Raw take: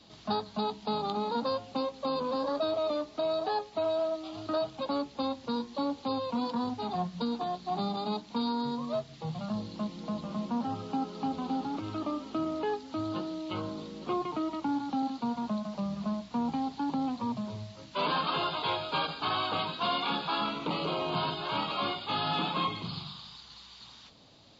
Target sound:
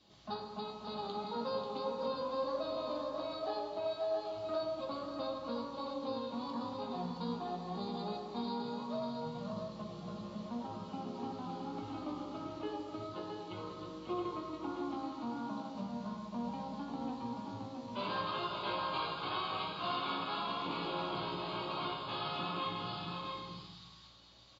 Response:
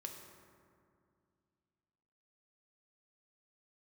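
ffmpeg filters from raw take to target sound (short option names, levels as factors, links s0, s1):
-filter_complex "[0:a]asplit=2[s0][s1];[s1]adelay=17,volume=0.447[s2];[s0][s2]amix=inputs=2:normalize=0,aecho=1:1:538|669:0.398|0.531[s3];[1:a]atrim=start_sample=2205,afade=t=out:st=0.38:d=0.01,atrim=end_sample=17199[s4];[s3][s4]afir=irnorm=-1:irlink=0,volume=0.531"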